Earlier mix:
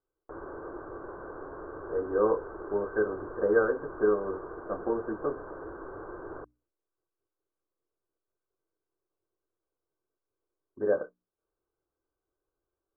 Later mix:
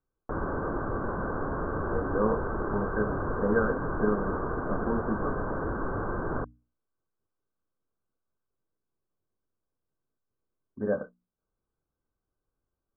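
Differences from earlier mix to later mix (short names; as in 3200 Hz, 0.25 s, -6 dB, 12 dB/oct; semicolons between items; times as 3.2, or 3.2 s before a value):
background +11.0 dB; master: add resonant low shelf 280 Hz +6.5 dB, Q 3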